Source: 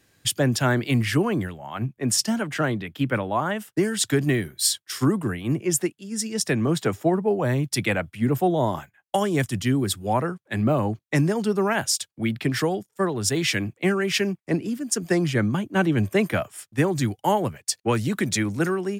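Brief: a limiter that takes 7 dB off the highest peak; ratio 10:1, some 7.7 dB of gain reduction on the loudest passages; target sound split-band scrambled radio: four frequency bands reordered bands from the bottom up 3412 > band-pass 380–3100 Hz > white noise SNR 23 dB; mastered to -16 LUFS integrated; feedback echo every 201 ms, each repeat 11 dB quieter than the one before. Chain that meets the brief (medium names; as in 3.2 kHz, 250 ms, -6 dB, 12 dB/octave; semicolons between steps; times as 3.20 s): compression 10:1, threshold -24 dBFS; peak limiter -20 dBFS; feedback delay 201 ms, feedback 28%, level -11 dB; four frequency bands reordered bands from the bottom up 3412; band-pass 380–3100 Hz; white noise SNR 23 dB; trim +14.5 dB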